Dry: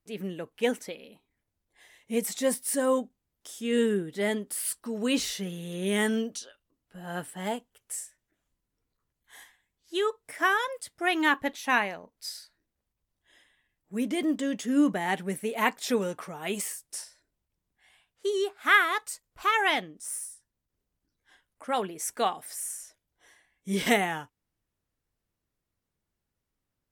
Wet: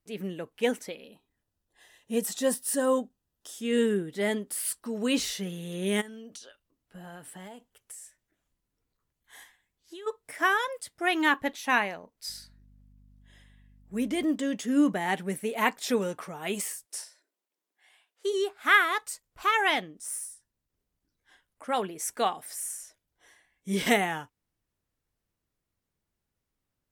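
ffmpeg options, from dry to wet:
-filter_complex "[0:a]asplit=3[a][b][c];[a]afade=t=out:st=1.03:d=0.02[d];[b]asuperstop=centerf=2200:order=4:qfactor=5.7,afade=t=in:st=1.03:d=0.02,afade=t=out:st=3.51:d=0.02[e];[c]afade=t=in:st=3.51:d=0.02[f];[d][e][f]amix=inputs=3:normalize=0,asplit=3[g][h][i];[g]afade=t=out:st=6:d=0.02[j];[h]acompressor=threshold=-40dB:ratio=20:attack=3.2:release=140:knee=1:detection=peak,afade=t=in:st=6:d=0.02,afade=t=out:st=10.06:d=0.02[k];[i]afade=t=in:st=10.06:d=0.02[l];[j][k][l]amix=inputs=3:normalize=0,asettb=1/sr,asplit=3[m][n][o];[m]atrim=end=12.284[p];[n]atrim=start=12.28:end=14.25,asetpts=PTS-STARTPTS,afade=t=in:d=0.004:c=qsin,afade=t=out:st=1.966:d=0.004:c=qsin,aeval=exprs='val(0)+0.00158*(sin(2*PI*50*n/s)+sin(2*PI*2*50*n/s)/2+sin(2*PI*3*50*n/s)/3+sin(2*PI*4*50*n/s)/4+sin(2*PI*5*50*n/s)/5)':c=same[q];[o]atrim=start=14.246[r];[p][q]acrossfade=d=0.004:c1=hsin:c2=qsin[s];[s][r]acrossfade=d=0.004:c1=qsin:c2=hsin,asplit=3[t][u][v];[t]afade=t=out:st=16.84:d=0.02[w];[u]highpass=f=310:w=0.5412,highpass=f=310:w=1.3066,afade=t=in:st=16.84:d=0.02,afade=t=out:st=18.32:d=0.02[x];[v]afade=t=in:st=18.32:d=0.02[y];[w][x][y]amix=inputs=3:normalize=0"

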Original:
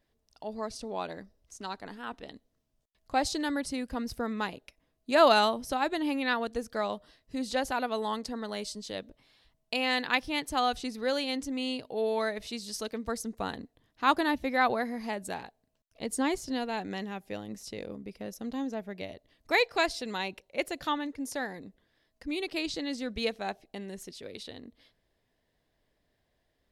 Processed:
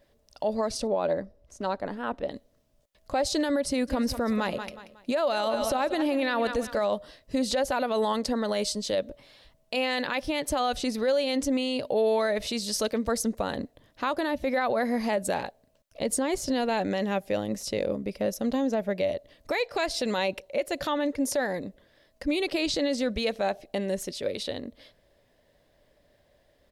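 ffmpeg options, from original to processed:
-filter_complex "[0:a]asettb=1/sr,asplit=3[a][b][c];[a]atrim=end=0.874[d];[b]atrim=start=0.87:end=2.31,asetpts=PTS-STARTPTS,afade=t=in:d=0.004:c=qsin,afade=t=out:st=1.436:d=0.004:c=qsin,highshelf=f=2.2k:g=-12[e];[c]atrim=start=2.306[f];[d][e]acrossfade=d=0.004:c1=hsin:c2=qsin[g];[g][f]acrossfade=d=0.004:c1=qsin:c2=hsin,asplit=3[h][i][j];[h]afade=t=out:st=3.87:d=0.02[k];[i]aecho=1:1:183|366|549:0.178|0.0622|0.0218,afade=t=in:st=3.87:d=0.02,afade=t=out:st=6.9:d=0.02[l];[j]afade=t=in:st=6.9:d=0.02[m];[k][l][m]amix=inputs=3:normalize=0,equalizer=f=570:w=6.2:g=12.5,acompressor=threshold=-28dB:ratio=5,alimiter=level_in=3dB:limit=-24dB:level=0:latency=1:release=27,volume=-3dB,volume=9dB"

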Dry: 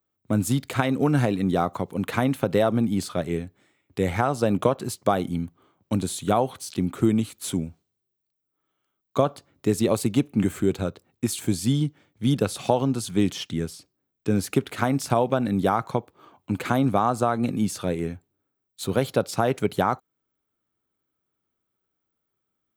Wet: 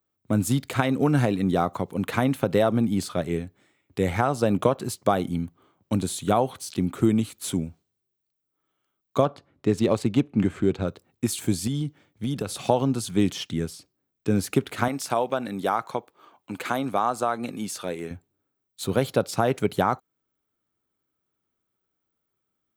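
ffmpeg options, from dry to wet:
-filter_complex "[0:a]asettb=1/sr,asplit=3[a][b][c];[a]atrim=end=9.234[d];[b]atrim=start=9.23:end=10.88,asetpts=PTS-STARTPTS,afade=t=in:d=0.004:c=qsin,afade=t=out:st=1.646:d=0.004:c=qsin,adynamicsmooth=sensitivity=4:basefreq=3.8k[e];[c]atrim=start=10.876[f];[d][e]acrossfade=d=0.004:c1=hsin:c2=qsin[g];[g][f]acrossfade=d=0.004:c1=qsin:c2=hsin,asettb=1/sr,asplit=3[h][i][j];[h]atrim=end=11.674[k];[i]atrim=start=11.67:end=12.57,asetpts=PTS-STARTPTS,afade=t=in:d=0.004:c=qsin,afade=t=out:st=0.896:d=0.004:c=qsin,acompressor=threshold=-23dB:ratio=6:attack=3.2:release=140:knee=1:detection=peak[l];[j]atrim=start=12.566[m];[k][l]acrossfade=d=0.004:c1=hsin:c2=qsin[n];[n][m]acrossfade=d=0.004:c1=qsin:c2=hsin,asettb=1/sr,asplit=3[o][p][q];[o]atrim=end=14.884[r];[p]atrim=start=14.88:end=18.11,asetpts=PTS-STARTPTS,afade=t=in:d=0.004:c=qsin,afade=t=out:st=3.226:d=0.004:c=qsin,highpass=f=520:p=1[s];[q]atrim=start=18.106[t];[r][s]acrossfade=d=0.004:c1=hsin:c2=qsin[u];[u][t]acrossfade=d=0.004:c1=qsin:c2=hsin"

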